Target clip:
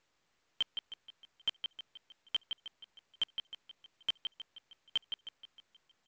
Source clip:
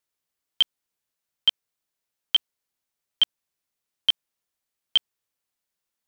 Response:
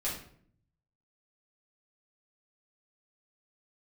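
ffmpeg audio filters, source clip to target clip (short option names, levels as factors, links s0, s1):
-filter_complex "[0:a]lowpass=2800,asplit=2[s0][s1];[s1]aecho=0:1:165:0.133[s2];[s0][s2]amix=inputs=2:normalize=0,asoftclip=type=hard:threshold=0.0376,asplit=2[s3][s4];[s4]aecho=0:1:313|626|939:0.2|0.0579|0.0168[s5];[s3][s5]amix=inputs=2:normalize=0,volume=1.12" -ar 16000 -c:a pcm_mulaw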